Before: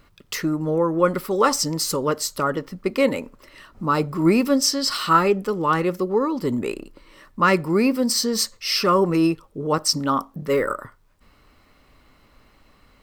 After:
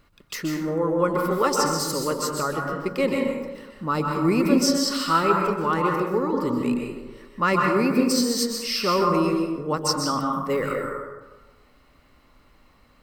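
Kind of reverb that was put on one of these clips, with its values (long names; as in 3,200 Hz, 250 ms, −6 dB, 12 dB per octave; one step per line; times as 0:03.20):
dense smooth reverb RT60 1.2 s, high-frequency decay 0.45×, pre-delay 115 ms, DRR 0.5 dB
level −4.5 dB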